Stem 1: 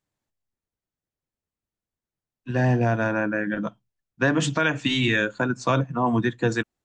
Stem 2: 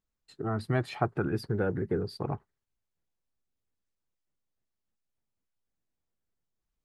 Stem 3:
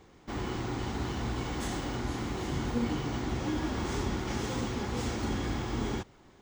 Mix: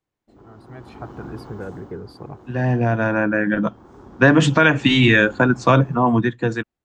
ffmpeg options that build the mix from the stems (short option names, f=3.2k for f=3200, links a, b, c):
-filter_complex "[0:a]bass=f=250:g=1,treble=f=4k:g=-8,volume=-1.5dB[a];[1:a]volume=-18.5dB,asplit=2[b][c];[2:a]lowshelf=f=140:g=-9,afwtdn=0.0178,volume=-3dB,afade=t=out:st=1.18:d=0.78:silence=0.281838,afade=t=in:st=3.73:d=0.67:silence=0.316228[d];[c]apad=whole_len=301884[e];[a][e]sidechaincompress=threshold=-59dB:ratio=12:attack=16:release=1480[f];[f][b][d]amix=inputs=3:normalize=0,dynaudnorm=f=300:g=7:m=15.5dB"